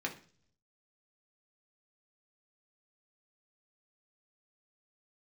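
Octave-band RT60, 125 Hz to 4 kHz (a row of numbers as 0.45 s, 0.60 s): 0.95 s, 0.70 s, 0.50 s, 0.40 s, 0.45 s, 0.55 s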